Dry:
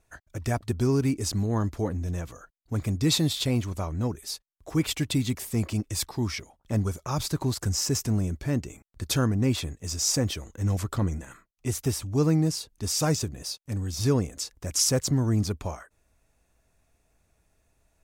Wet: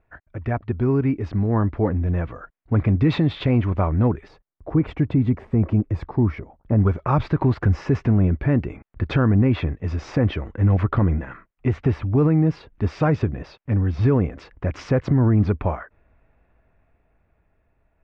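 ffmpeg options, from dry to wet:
ffmpeg -i in.wav -filter_complex "[0:a]asplit=3[link_01][link_02][link_03];[link_01]afade=type=out:start_time=4.27:duration=0.02[link_04];[link_02]equalizer=frequency=3000:width_type=o:width=2.5:gain=-12.5,afade=type=in:start_time=4.27:duration=0.02,afade=type=out:start_time=6.77:duration=0.02[link_05];[link_03]afade=type=in:start_time=6.77:duration=0.02[link_06];[link_04][link_05][link_06]amix=inputs=3:normalize=0,lowpass=frequency=2300:width=0.5412,lowpass=frequency=2300:width=1.3066,dynaudnorm=framelen=410:gausssize=9:maxgain=7.5dB,alimiter=level_in=12dB:limit=-1dB:release=50:level=0:latency=1,volume=-9dB" out.wav

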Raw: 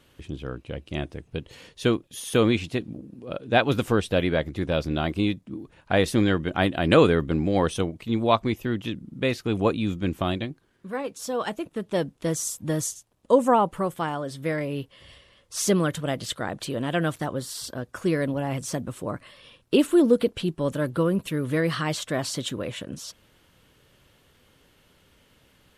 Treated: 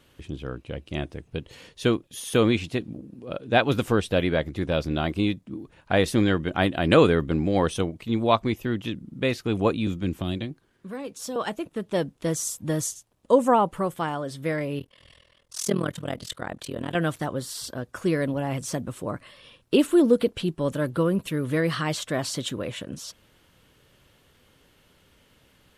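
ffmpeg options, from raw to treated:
ffmpeg -i in.wav -filter_complex "[0:a]asettb=1/sr,asplit=3[link_01][link_02][link_03];[link_01]atrim=end=9.874[link_04];[link_02]atrim=start=9.87:end=11.36,asetpts=PTS-STARTPTS,afade=type=in:duration=0.004:curve=qsin,afade=type=out:start_time=1.486:duration=0.004:curve=qsin,acrossover=split=390|3000[link_05][link_06][link_07];[link_06]acompressor=threshold=-37dB:ratio=6:attack=3.2:release=140:knee=2.83:detection=peak[link_08];[link_05][link_08][link_07]amix=inputs=3:normalize=0[link_09];[link_03]atrim=start=11.356[link_10];[link_04][link_09]acrossfade=duration=0.004:curve1=hsin:curve2=qsin[link_11];[link_11][link_10]acrossfade=duration=0.004:curve1=qsin:curve2=hsin,asettb=1/sr,asplit=3[link_12][link_13][link_14];[link_12]atrim=end=14.794[link_15];[link_13]atrim=start=14.79:end=16.95,asetpts=PTS-STARTPTS,afade=type=in:duration=0.004:curve=qsin,afade=type=out:start_time=2.156:duration=0.004:curve=qsin,tremolo=f=41:d=0.947[link_16];[link_14]atrim=start=16.946[link_17];[link_15][link_16]acrossfade=duration=0.004:curve1=hsin:curve2=qsin[link_18];[link_18][link_17]acrossfade=duration=0.004:curve1=qsin:curve2=hsin" out.wav

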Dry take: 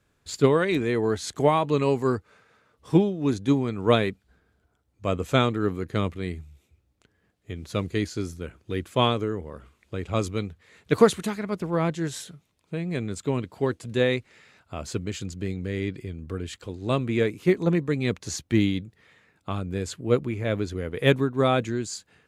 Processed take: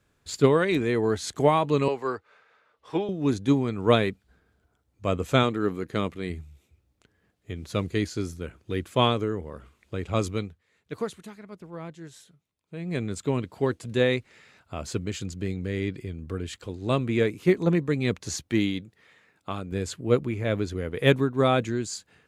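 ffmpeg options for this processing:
ffmpeg -i in.wav -filter_complex "[0:a]asettb=1/sr,asplit=3[link_01][link_02][link_03];[link_01]atrim=end=1.884[link_04];[link_02]atrim=start=1.88:end=3.09,asetpts=PTS-STARTPTS,afade=type=in:duration=0.004:curve=qsin,afade=type=out:start_time=1.206:duration=0.004:curve=qsin,acrossover=split=420 4700:gain=0.158 1 0.224[link_05][link_06][link_07];[link_05][link_06][link_07]amix=inputs=3:normalize=0[link_08];[link_03]atrim=start=3.086[link_09];[link_04][link_08]acrossfade=duration=0.004:curve1=hsin:curve2=qsin[link_10];[link_10][link_09]acrossfade=duration=0.004:curve1=qsin:curve2=hsin,asettb=1/sr,asplit=3[link_11][link_12][link_13];[link_11]atrim=end=5.434[link_14];[link_12]atrim=start=5.43:end=6.3,asetpts=PTS-STARTPTS,afade=type=in:duration=0.004:curve=qsin,afade=type=out:start_time=0.866:duration=0.004:curve=qsin,equalizer=frequency=86:width_type=o:width=1.1:gain=-8[link_15];[link_13]atrim=start=6.296[link_16];[link_14][link_15]acrossfade=duration=0.004:curve1=hsin:curve2=qsin[link_17];[link_17][link_16]acrossfade=duration=0.004:curve1=qsin:curve2=hsin,asettb=1/sr,asplit=3[link_18][link_19][link_20];[link_18]atrim=end=18.484[link_21];[link_19]atrim=start=18.48:end=19.72,asetpts=PTS-STARTPTS,afade=type=in:duration=0.004:curve=qsin,afade=type=out:start_time=1.236:duration=0.004:curve=qsin,lowshelf=frequency=150:gain=-10[link_22];[link_20]atrim=start=19.716[link_23];[link_21][link_22]acrossfade=duration=0.004:curve1=hsin:curve2=qsin[link_24];[link_24][link_23]acrossfade=duration=0.004:curve1=qsin:curve2=hsin,asplit=3[link_25][link_26][link_27];[link_25]atrim=end=10.62,asetpts=PTS-STARTPTS,afade=type=out:start_time=10.35:duration=0.27:silence=0.199526[link_28];[link_26]atrim=start=10.62:end=12.68,asetpts=PTS-STARTPTS,volume=-14dB[link_29];[link_27]atrim=start=12.68,asetpts=PTS-STARTPTS,afade=type=in:duration=0.27:silence=0.199526[link_30];[link_28][link_29][link_30]concat=n=3:v=0:a=1" out.wav

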